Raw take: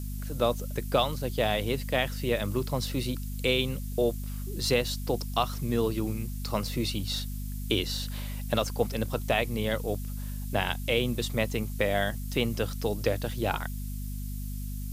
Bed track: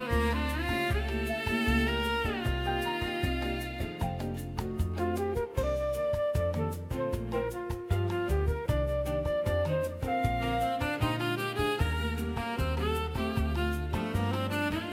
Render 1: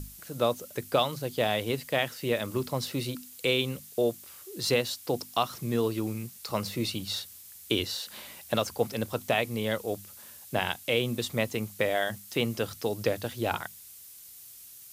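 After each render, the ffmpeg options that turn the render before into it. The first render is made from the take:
-af "bandreject=f=50:t=h:w=6,bandreject=f=100:t=h:w=6,bandreject=f=150:t=h:w=6,bandreject=f=200:t=h:w=6,bandreject=f=250:t=h:w=6"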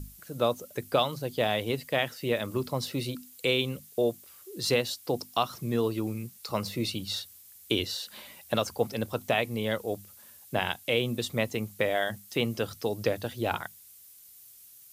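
-af "afftdn=nr=6:nf=-49"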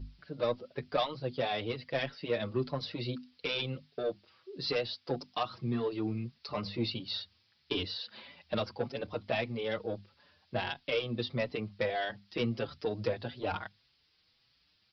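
-filter_complex "[0:a]aresample=11025,asoftclip=type=tanh:threshold=-20dB,aresample=44100,asplit=2[a][b];[b]adelay=5.7,afreqshift=1.6[c];[a][c]amix=inputs=2:normalize=1"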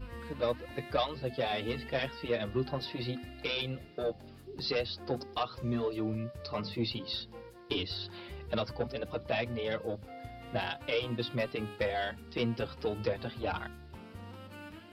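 -filter_complex "[1:a]volume=-17dB[a];[0:a][a]amix=inputs=2:normalize=0"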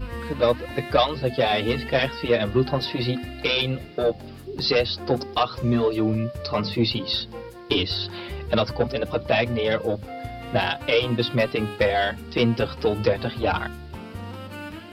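-af "volume=11.5dB"

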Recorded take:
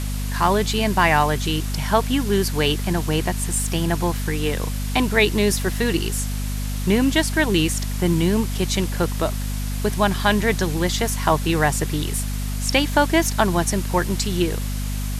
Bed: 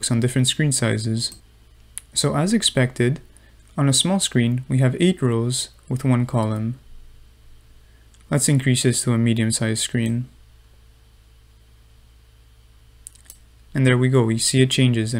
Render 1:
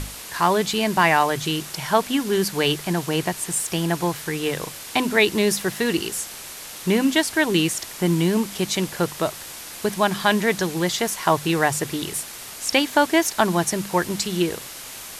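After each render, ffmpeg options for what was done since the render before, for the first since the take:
-af "bandreject=f=50:t=h:w=6,bandreject=f=100:t=h:w=6,bandreject=f=150:t=h:w=6,bandreject=f=200:t=h:w=6,bandreject=f=250:t=h:w=6"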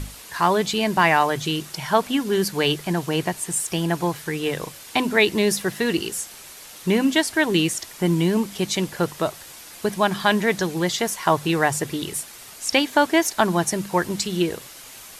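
-af "afftdn=nr=6:nf=-37"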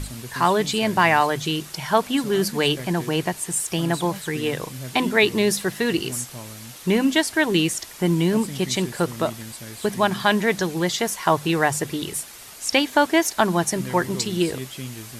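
-filter_complex "[1:a]volume=-17.5dB[a];[0:a][a]amix=inputs=2:normalize=0"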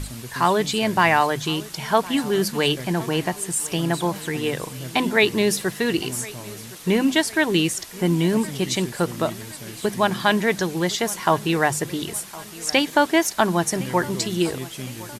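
-af "aecho=1:1:1062|2124|3186|4248:0.1|0.051|0.026|0.0133"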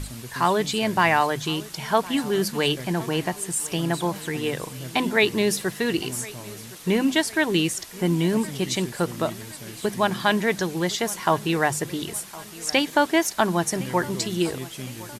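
-af "volume=-2dB"

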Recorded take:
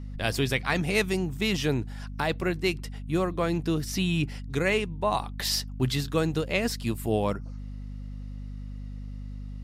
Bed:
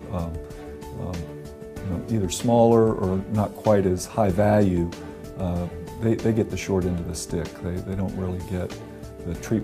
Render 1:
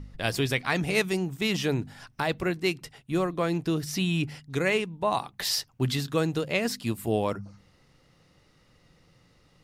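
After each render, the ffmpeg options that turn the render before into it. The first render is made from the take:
-af "bandreject=f=50:t=h:w=4,bandreject=f=100:t=h:w=4,bandreject=f=150:t=h:w=4,bandreject=f=200:t=h:w=4,bandreject=f=250:t=h:w=4"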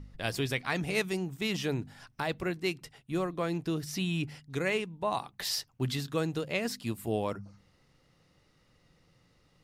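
-af "volume=-5dB"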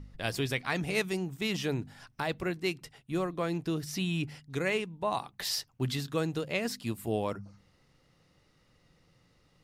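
-af anull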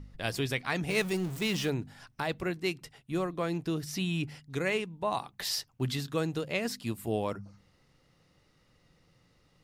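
-filter_complex "[0:a]asettb=1/sr,asplit=3[a][b][c];[a]atrim=end=0.894[d];[b]atrim=start=0.89:end=1.7,asetpts=PTS-STARTPTS,afade=t=in:d=0.004:c=qsin,afade=t=out:st=0.806:d=0.004:c=qsin,aeval=exprs='val(0)+0.5*0.0133*sgn(val(0))':c=same[e];[c]atrim=start=1.696[f];[d][e]acrossfade=d=0.004:c1=hsin:c2=qsin[g];[g][f]acrossfade=d=0.004:c1=qsin:c2=hsin"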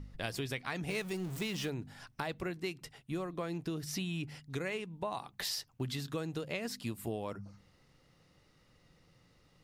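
-af "acompressor=threshold=-34dB:ratio=6"

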